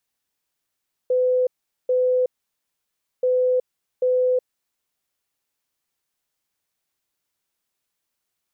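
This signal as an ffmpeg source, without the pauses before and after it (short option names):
-f lavfi -i "aevalsrc='0.158*sin(2*PI*505*t)*clip(min(mod(mod(t,2.13),0.79),0.37-mod(mod(t,2.13),0.79))/0.005,0,1)*lt(mod(t,2.13),1.58)':d=4.26:s=44100"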